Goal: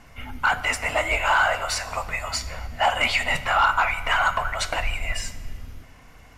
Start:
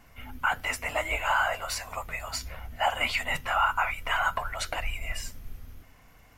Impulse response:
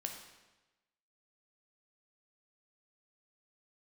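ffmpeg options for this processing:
-filter_complex "[0:a]lowpass=9.8k,asoftclip=type=tanh:threshold=-17.5dB,asplit=2[a][b];[1:a]atrim=start_sample=2205,asetrate=28665,aresample=44100[c];[b][c]afir=irnorm=-1:irlink=0,volume=-7.5dB[d];[a][d]amix=inputs=2:normalize=0,volume=4dB"

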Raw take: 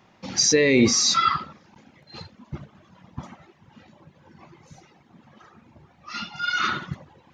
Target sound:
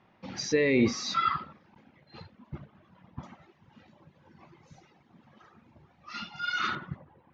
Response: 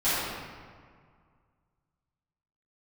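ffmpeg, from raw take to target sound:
-af "asetnsamples=n=441:p=0,asendcmd='3.23 lowpass f 5500;6.75 lowpass f 1800',lowpass=3.1k,volume=-6dB"

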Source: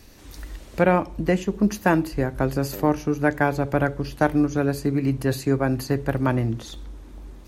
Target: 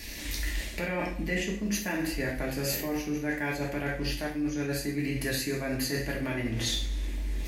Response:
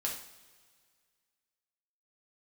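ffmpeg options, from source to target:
-filter_complex "[0:a]alimiter=limit=-16.5dB:level=0:latency=1:release=303[a];[1:a]atrim=start_sample=2205,afade=t=out:st=0.4:d=0.01,atrim=end_sample=18081[b];[a][b]afir=irnorm=-1:irlink=0,areverse,acompressor=threshold=-32dB:ratio=6,areverse,highshelf=f=1.6k:t=q:w=3:g=6.5,volume=3.5dB"

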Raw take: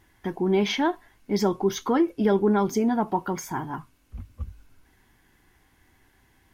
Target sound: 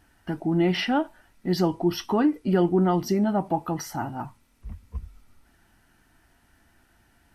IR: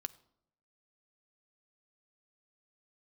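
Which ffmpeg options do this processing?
-af "asetrate=39249,aresample=44100"

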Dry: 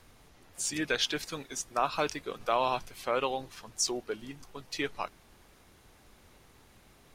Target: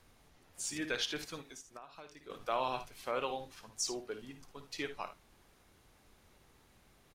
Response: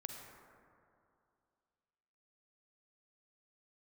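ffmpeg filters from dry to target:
-filter_complex "[0:a]asplit=2[a][b];[b]aecho=0:1:55|74:0.282|0.15[c];[a][c]amix=inputs=2:normalize=0,asettb=1/sr,asplit=3[d][e][f];[d]atrim=end=1.404[g];[e]atrim=start=1.4:end=2.3,asetpts=PTS-STARTPTS,afade=t=in:d=0.004:c=qsin,afade=t=out:st=0.896:d=0.004:c=qsin,acompressor=threshold=-42dB:ratio=8[h];[f]atrim=start=2.296[i];[g][h]acrossfade=d=0.004:c1=hsin:c2=qsin[j];[j][i]acrossfade=d=0.004:c1=qsin:c2=hsin,asplit=2[k][l];[l]aecho=0:1:81:0.0668[m];[k][m]amix=inputs=2:normalize=0,volume=-6.5dB"

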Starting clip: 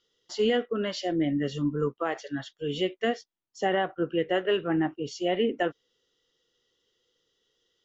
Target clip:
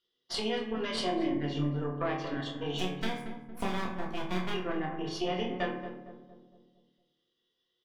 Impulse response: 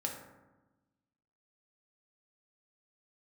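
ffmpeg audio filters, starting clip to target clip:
-filter_complex "[0:a]asettb=1/sr,asplit=3[a][b][c];[a]atrim=end=0.754[d];[b]atrim=start=0.75:end=1.33,asetpts=PTS-STARTPTS,afade=t=in:d=0.004:c=qsin,afade=t=out:st=0.576:d=0.004:c=qsin,highpass=260[e];[c]atrim=start=1.326[f];[d][e]acrossfade=d=0.004:c1=hsin:c2=qsin[g];[g][f]acrossfade=d=0.004:c1=qsin:c2=hsin,agate=range=-13dB:threshold=-52dB:ratio=16:detection=peak,lowpass=f=4.3k:w=0.5412,lowpass=f=4.3k:w=1.3066,acompressor=threshold=-36dB:ratio=6,crystalizer=i=2.5:c=0,aeval=exprs='0.0596*(cos(1*acos(clip(val(0)/0.0596,-1,1)))-cos(1*PI/2))+0.0266*(cos(2*acos(clip(val(0)/0.0596,-1,1)))-cos(2*PI/2))':c=same,asettb=1/sr,asplit=3[h][i][j];[h]atrim=end=2.784[k];[i]atrim=start=2.78:end=4.54,asetpts=PTS-STARTPTS,afade=t=in:d=0.004:c=qsin,afade=t=out:st=1.756:d=0.004:c=qsin,aeval=exprs='abs(val(0))':c=same[l];[j]atrim=start=4.536[m];[k][l]acrossfade=d=0.004:c1=hsin:c2=qsin[n];[n][m]acrossfade=d=0.004:c1=qsin:c2=hsin,asplit=2[o][p];[p]adelay=27,volume=-7.5dB[q];[o][q]amix=inputs=2:normalize=0,asplit=2[r][s];[s]adelay=230,lowpass=f=970:p=1,volume=-8dB,asplit=2[t][u];[u]adelay=230,lowpass=f=970:p=1,volume=0.53,asplit=2[v][w];[w]adelay=230,lowpass=f=970:p=1,volume=0.53,asplit=2[x][y];[y]adelay=230,lowpass=f=970:p=1,volume=0.53,asplit=2[z][aa];[aa]adelay=230,lowpass=f=970:p=1,volume=0.53,asplit=2[ab][ac];[ac]adelay=230,lowpass=f=970:p=1,volume=0.53[ad];[r][t][v][x][z][ab][ad]amix=inputs=7:normalize=0[ae];[1:a]atrim=start_sample=2205,asetrate=57330,aresample=44100[af];[ae][af]afir=irnorm=-1:irlink=0,volume=4.5dB"

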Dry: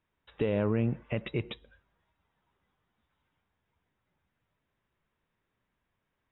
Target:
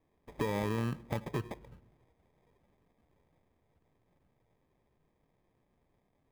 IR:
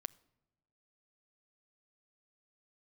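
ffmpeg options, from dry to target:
-filter_complex "[0:a]acrusher=samples=31:mix=1:aa=0.000001,asplit=2[a][b];[1:a]atrim=start_sample=2205,lowpass=3.4k[c];[b][c]afir=irnorm=-1:irlink=0,volume=4.5dB[d];[a][d]amix=inputs=2:normalize=0,acompressor=threshold=-39dB:ratio=2"

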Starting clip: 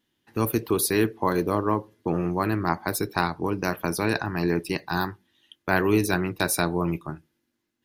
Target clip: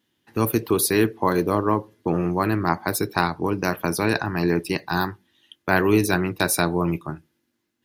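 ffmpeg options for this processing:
-af "highpass=55,volume=3dB"

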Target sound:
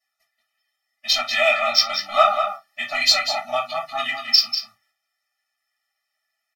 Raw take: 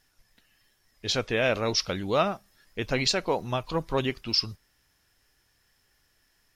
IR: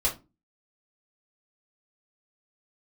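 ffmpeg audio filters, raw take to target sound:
-filter_complex "[0:a]asettb=1/sr,asplit=3[a][b][c];[a]atrim=end=1.384[d];[b]atrim=start=1.38:end=1.97,asetpts=PTS-STARTPTS,afade=t=in:d=0.004:c=qsin,afade=t=out:st=0.586:d=0.004:c=qsin,lowpass=8k[e];[c]atrim=start=1.966[f];[d][e]acrossfade=d=0.004:c1=hsin:c2=qsin[g];[g][f]acrossfade=d=0.004:c1=qsin:c2=hsin,agate=range=-15dB:threshold=-57dB:ratio=16:detection=peak,highpass=1.1k,asplit=2[h][i];[i]adynamicsmooth=sensitivity=4:basefreq=3.7k,volume=1dB[j];[h][j]amix=inputs=2:normalize=0,asplit=2[k][l];[l]adelay=192.4,volume=-7dB,highshelf=f=4k:g=-4.33[m];[k][m]amix=inputs=2:normalize=0[n];[1:a]atrim=start_sample=2205,atrim=end_sample=3528[o];[n][o]afir=irnorm=-1:irlink=0,afftfilt=real='re*eq(mod(floor(b*sr/1024/290),2),0)':imag='im*eq(mod(floor(b*sr/1024/290),2),0)':win_size=1024:overlap=0.75"

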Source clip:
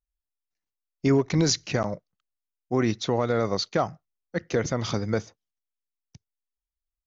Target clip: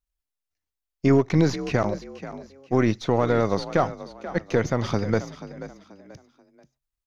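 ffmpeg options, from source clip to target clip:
-filter_complex "[0:a]aeval=exprs='if(lt(val(0),0),0.708*val(0),val(0))':c=same,acrossover=split=2600[a][b];[b]acompressor=threshold=-42dB:ratio=4:attack=1:release=60[c];[a][c]amix=inputs=2:normalize=0,asplit=2[d][e];[e]asplit=3[f][g][h];[f]adelay=484,afreqshift=44,volume=-14dB[i];[g]adelay=968,afreqshift=88,volume=-23.6dB[j];[h]adelay=1452,afreqshift=132,volume=-33.3dB[k];[i][j][k]amix=inputs=3:normalize=0[l];[d][l]amix=inputs=2:normalize=0,volume=4dB"

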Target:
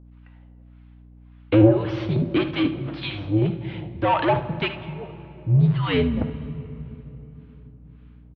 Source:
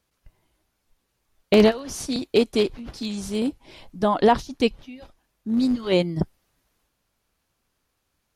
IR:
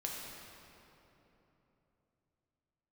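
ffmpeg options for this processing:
-filter_complex "[0:a]asplit=2[a][b];[b]highpass=f=720:p=1,volume=21dB,asoftclip=type=tanh:threshold=-5.5dB[c];[a][c]amix=inputs=2:normalize=0,lowpass=f=2.1k:p=1,volume=-6dB,acrossover=split=840[d][e];[d]aeval=exprs='val(0)*(1-1/2+1/2*cos(2*PI*1.8*n/s))':c=same[f];[e]aeval=exprs='val(0)*(1-1/2-1/2*cos(2*PI*1.8*n/s))':c=same[g];[f][g]amix=inputs=2:normalize=0,highpass=f=190:t=q:w=0.5412,highpass=f=190:t=q:w=1.307,lowpass=f=3.5k:t=q:w=0.5176,lowpass=f=3.5k:t=q:w=0.7071,lowpass=f=3.5k:t=q:w=1.932,afreqshift=-100,aecho=1:1:57|75:0.158|0.2,asplit=2[h][i];[1:a]atrim=start_sample=2205,lowshelf=f=200:g=11[j];[i][j]afir=irnorm=-1:irlink=0,volume=-11.5dB[k];[h][k]amix=inputs=2:normalize=0,aeval=exprs='val(0)+0.00562*(sin(2*PI*60*n/s)+sin(2*PI*2*60*n/s)/2+sin(2*PI*3*60*n/s)/3+sin(2*PI*4*60*n/s)/4+sin(2*PI*5*60*n/s)/5)':c=same,volume=-1dB"

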